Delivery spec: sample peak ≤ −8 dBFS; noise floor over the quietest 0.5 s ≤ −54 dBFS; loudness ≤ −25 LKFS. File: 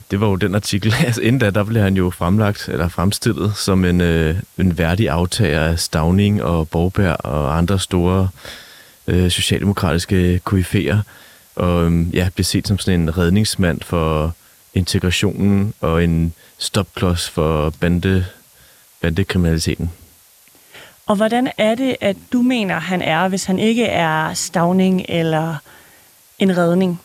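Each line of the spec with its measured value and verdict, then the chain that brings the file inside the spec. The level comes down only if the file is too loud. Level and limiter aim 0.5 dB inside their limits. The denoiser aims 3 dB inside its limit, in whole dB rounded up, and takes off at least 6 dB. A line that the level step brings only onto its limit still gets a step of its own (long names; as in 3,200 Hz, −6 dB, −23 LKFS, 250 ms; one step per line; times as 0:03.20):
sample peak −3.5 dBFS: out of spec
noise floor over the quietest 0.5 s −49 dBFS: out of spec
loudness −17.5 LKFS: out of spec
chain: level −8 dB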